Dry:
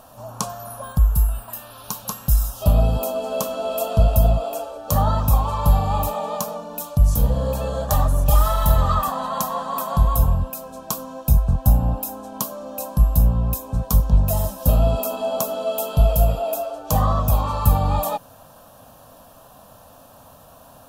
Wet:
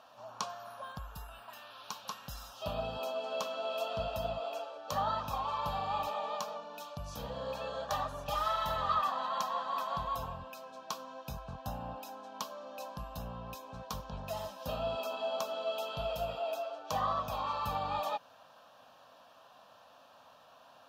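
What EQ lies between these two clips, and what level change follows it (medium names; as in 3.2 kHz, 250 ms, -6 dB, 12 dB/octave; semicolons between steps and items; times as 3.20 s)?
high-pass 850 Hz 6 dB/octave; distance through air 250 m; treble shelf 2 kHz +11 dB; -7.5 dB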